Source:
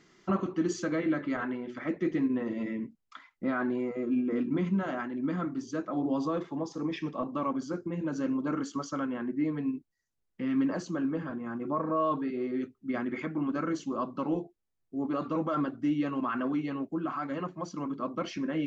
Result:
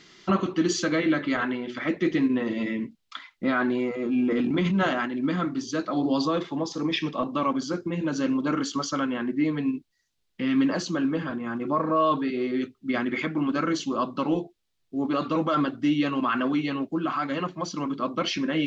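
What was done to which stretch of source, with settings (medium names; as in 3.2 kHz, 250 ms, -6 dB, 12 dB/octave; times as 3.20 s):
3.92–5.06 s: transient shaper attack -6 dB, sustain +7 dB
5.79–6.22 s: peaking EQ 4.4 kHz +14.5 dB 0.23 oct
whole clip: peaking EQ 3.7 kHz +11.5 dB 1.5 oct; trim +5 dB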